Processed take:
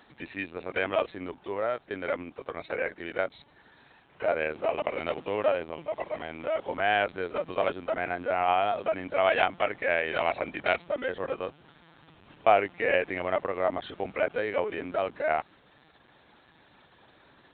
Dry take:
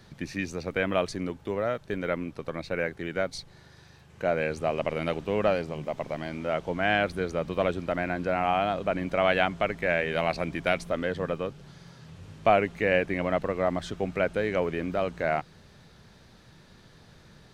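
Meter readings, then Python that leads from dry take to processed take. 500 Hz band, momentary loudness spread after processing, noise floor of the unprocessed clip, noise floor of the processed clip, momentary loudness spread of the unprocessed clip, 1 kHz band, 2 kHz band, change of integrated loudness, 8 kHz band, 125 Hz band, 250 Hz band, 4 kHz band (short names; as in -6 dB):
-1.0 dB, 10 LU, -55 dBFS, -60 dBFS, 9 LU, +1.0 dB, -0.5 dB, -1.0 dB, n/a, -11.5 dB, -7.0 dB, -1.5 dB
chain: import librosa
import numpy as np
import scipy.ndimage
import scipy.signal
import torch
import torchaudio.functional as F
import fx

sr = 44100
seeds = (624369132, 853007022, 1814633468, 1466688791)

y = fx.peak_eq(x, sr, hz=870.0, db=3.5, octaves=0.77)
y = fx.lpc_vocoder(y, sr, seeds[0], excitation='pitch_kept', order=16)
y = fx.highpass(y, sr, hz=430.0, slope=6)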